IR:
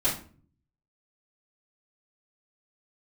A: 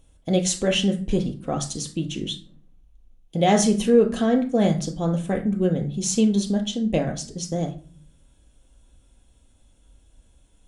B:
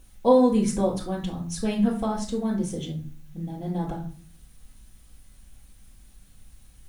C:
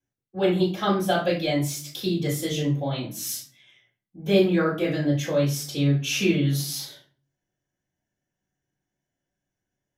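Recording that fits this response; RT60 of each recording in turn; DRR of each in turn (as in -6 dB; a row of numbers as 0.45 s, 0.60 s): C; 0.45 s, 0.45 s, 0.45 s; 2.5 dB, -3.0 dB, -11.0 dB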